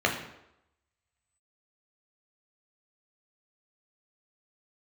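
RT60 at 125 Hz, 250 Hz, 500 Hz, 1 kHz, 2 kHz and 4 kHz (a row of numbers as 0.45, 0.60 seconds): 0.70, 0.75, 0.85, 0.85, 0.75, 0.65 seconds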